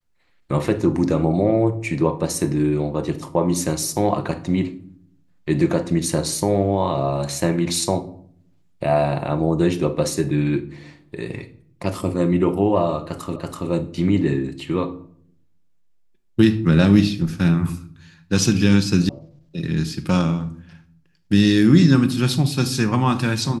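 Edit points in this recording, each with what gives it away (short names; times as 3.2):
13.36 repeat of the last 0.33 s
19.09 sound cut off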